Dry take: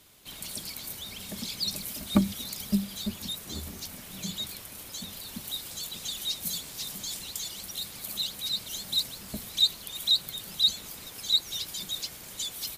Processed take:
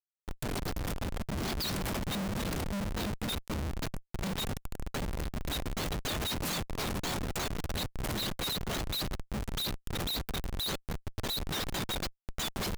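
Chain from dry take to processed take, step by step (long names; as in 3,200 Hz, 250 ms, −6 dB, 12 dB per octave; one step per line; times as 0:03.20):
tape delay 61 ms, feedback 56%, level −14.5 dB, low-pass 1,700 Hz
comparator with hysteresis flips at −32.5 dBFS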